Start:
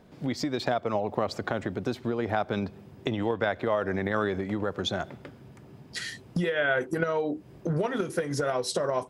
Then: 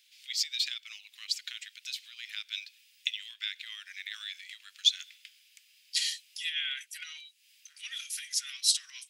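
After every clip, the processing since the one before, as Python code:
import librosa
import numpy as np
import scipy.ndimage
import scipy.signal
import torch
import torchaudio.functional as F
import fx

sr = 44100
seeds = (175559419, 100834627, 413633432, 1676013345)

y = scipy.signal.sosfilt(scipy.signal.butter(6, 2500.0, 'highpass', fs=sr, output='sos'), x)
y = y * 10.0 ** (8.5 / 20.0)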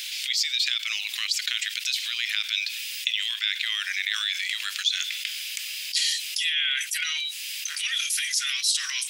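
y = fx.env_flatten(x, sr, amount_pct=70)
y = y * 10.0 ** (-1.5 / 20.0)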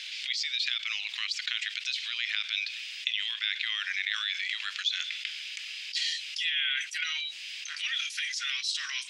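y = fx.air_absorb(x, sr, metres=140.0)
y = y * 10.0 ** (-1.5 / 20.0)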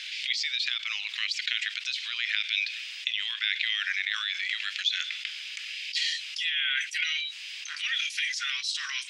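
y = fx.filter_lfo_highpass(x, sr, shape='sine', hz=0.89, low_hz=750.0, high_hz=2100.0, q=1.6)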